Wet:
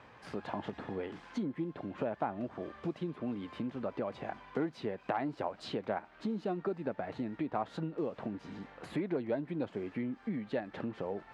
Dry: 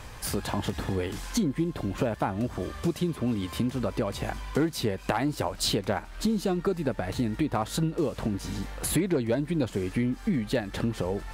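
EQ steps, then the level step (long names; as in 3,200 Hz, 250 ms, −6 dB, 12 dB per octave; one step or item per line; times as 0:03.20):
high-pass filter 180 Hz 12 dB per octave
low-pass filter 2,400 Hz 12 dB per octave
dynamic equaliser 710 Hz, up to +4 dB, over −42 dBFS, Q 2.3
−8.0 dB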